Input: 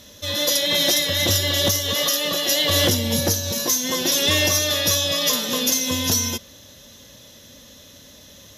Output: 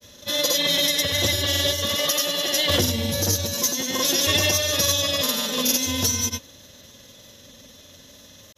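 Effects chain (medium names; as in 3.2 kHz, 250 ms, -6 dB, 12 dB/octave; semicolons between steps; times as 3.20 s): hum notches 60/120/180/240/300 Hz; granulator, pitch spread up and down by 0 st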